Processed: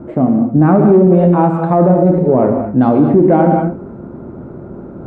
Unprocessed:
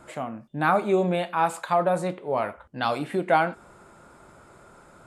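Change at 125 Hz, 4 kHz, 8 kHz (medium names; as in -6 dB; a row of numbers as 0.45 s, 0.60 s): +21.0 dB, under -10 dB, under -20 dB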